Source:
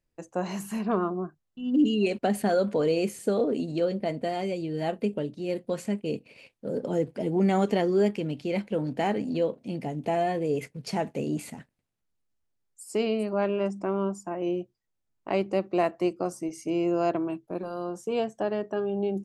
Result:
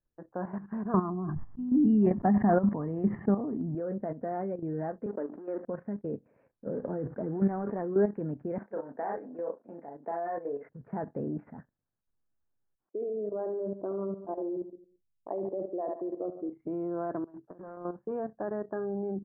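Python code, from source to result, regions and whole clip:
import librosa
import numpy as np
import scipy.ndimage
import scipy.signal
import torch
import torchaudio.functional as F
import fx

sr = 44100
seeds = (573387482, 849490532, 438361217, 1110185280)

y = fx.chain(x, sr, fx.low_shelf(hz=330.0, db=6.5),
    fx.comb(ms=1.0, depth=0.69),
    fx.sustainer(db_per_s=39.0), at=(0.94, 3.75))
y = fx.chain(y, sr, fx.law_mismatch(coded='A'),
    fx.highpass(hz=270.0, slope=24),
    fx.sustainer(db_per_s=42.0), at=(5.06, 5.65))
y = fx.chain(y, sr, fx.cvsd(bps=32000),
    fx.sustainer(db_per_s=140.0), at=(6.72, 7.87))
y = fx.chain(y, sr, fx.highpass(hz=490.0, slope=12),
    fx.high_shelf_res(hz=4700.0, db=9.0, q=3.0),
    fx.doubler(ms=35.0, db=-3), at=(8.58, 10.69))
y = fx.chain(y, sr, fx.envelope_sharpen(power=2.0),
    fx.echo_feedback(ms=72, feedback_pct=49, wet_db=-9.5), at=(12.89, 16.53))
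y = fx.chain(y, sr, fx.highpass(hz=140.0, slope=6),
    fx.over_compress(threshold_db=-42.0, ratio=-1.0),
    fx.overload_stage(gain_db=35.5), at=(17.24, 17.77))
y = scipy.signal.sosfilt(scipy.signal.cheby1(5, 1.0, 1700.0, 'lowpass', fs=sr, output='sos'), y)
y = fx.level_steps(y, sr, step_db=11)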